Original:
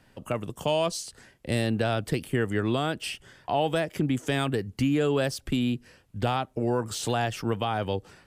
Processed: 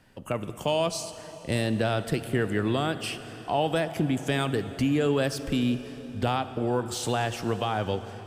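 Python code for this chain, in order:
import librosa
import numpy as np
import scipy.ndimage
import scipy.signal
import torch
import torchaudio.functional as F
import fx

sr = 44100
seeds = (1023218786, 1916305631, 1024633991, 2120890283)

y = fx.rev_plate(x, sr, seeds[0], rt60_s=4.3, hf_ratio=0.75, predelay_ms=0, drr_db=11.0)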